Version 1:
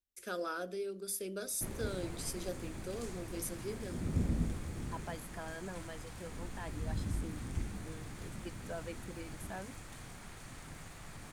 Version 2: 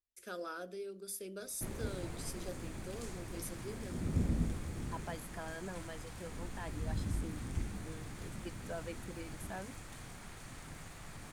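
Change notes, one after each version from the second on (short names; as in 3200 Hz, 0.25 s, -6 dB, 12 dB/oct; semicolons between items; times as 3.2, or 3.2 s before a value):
first voice -4.5 dB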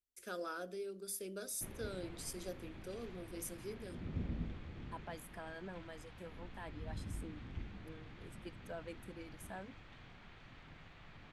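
second voice -3.5 dB; background: add ladder low-pass 4000 Hz, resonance 35%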